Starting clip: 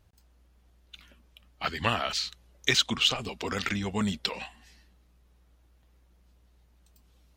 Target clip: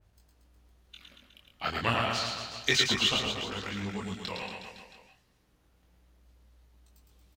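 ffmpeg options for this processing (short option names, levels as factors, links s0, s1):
-filter_complex "[0:a]asettb=1/sr,asplit=3[s0][s1][s2];[s0]atrim=end=3.304[s3];[s1]atrim=start=3.3:end=4.28,asetpts=PTS-STARTPTS,afade=t=in:d=0.004:c=qsin,afade=t=out:st=0.976:d=0.004:c=qsin,acompressor=threshold=0.01:ratio=2[s4];[s2]atrim=start=4.276[s5];[s3][s4]acrossfade=d=0.004:c1=hsin:c2=qsin[s6];[s6][s5]acrossfade=d=0.004:c1=qsin:c2=hsin,flanger=delay=19:depth=6.1:speed=0.3,aecho=1:1:110|231|364.1|510.5|671.6:0.631|0.398|0.251|0.158|0.1,adynamicequalizer=threshold=0.01:dfrequency=2900:dqfactor=0.7:tfrequency=2900:tqfactor=0.7:attack=5:release=100:ratio=0.375:range=2:mode=cutabove:tftype=highshelf,volume=1.19"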